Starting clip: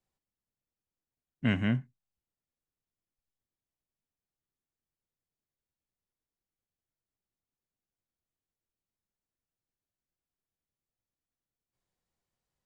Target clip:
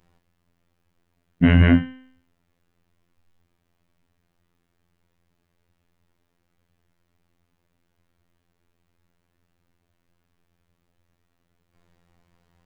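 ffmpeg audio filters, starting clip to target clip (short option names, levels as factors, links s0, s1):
-filter_complex "[0:a]bass=f=250:g=4,treble=f=4000:g=-13,bandreject=f=258.7:t=h:w=4,bandreject=f=517.4:t=h:w=4,bandreject=f=776.1:t=h:w=4,bandreject=f=1034.8:t=h:w=4,bandreject=f=1293.5:t=h:w=4,bandreject=f=1552.2:t=h:w=4,bandreject=f=1810.9:t=h:w=4,bandreject=f=2069.6:t=h:w=4,bandreject=f=2328.3:t=h:w=4,bandreject=f=2587:t=h:w=4,bandreject=f=2845.7:t=h:w=4,bandreject=f=3104.4:t=h:w=4,bandreject=f=3363.1:t=h:w=4,bandreject=f=3621.8:t=h:w=4,bandreject=f=3880.5:t=h:w=4,bandreject=f=4139.2:t=h:w=4,bandreject=f=4397.9:t=h:w=4,bandreject=f=4656.6:t=h:w=4,bandreject=f=4915.3:t=h:w=4,bandreject=f=5174:t=h:w=4,bandreject=f=5432.7:t=h:w=4,bandreject=f=5691.4:t=h:w=4,bandreject=f=5950.1:t=h:w=4,asplit=2[s0][s1];[s1]acompressor=threshold=0.01:ratio=5,volume=1.12[s2];[s0][s2]amix=inputs=2:normalize=0,afftfilt=real='hypot(re,im)*cos(PI*b)':imag='0':win_size=2048:overlap=0.75,alimiter=level_in=11.2:limit=0.891:release=50:level=0:latency=1,volume=0.891"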